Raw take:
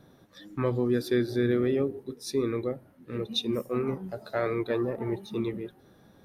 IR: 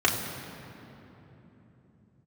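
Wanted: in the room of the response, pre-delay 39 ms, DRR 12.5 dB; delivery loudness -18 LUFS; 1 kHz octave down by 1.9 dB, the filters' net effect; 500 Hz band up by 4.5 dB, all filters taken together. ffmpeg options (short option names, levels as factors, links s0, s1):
-filter_complex "[0:a]equalizer=f=500:t=o:g=7,equalizer=f=1000:t=o:g=-5,asplit=2[s0][s1];[1:a]atrim=start_sample=2205,adelay=39[s2];[s1][s2]afir=irnorm=-1:irlink=0,volume=0.0422[s3];[s0][s3]amix=inputs=2:normalize=0,volume=2.66"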